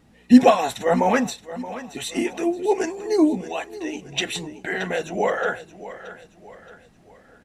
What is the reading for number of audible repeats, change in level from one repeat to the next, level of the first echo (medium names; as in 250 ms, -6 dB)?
3, -7.5 dB, -15.0 dB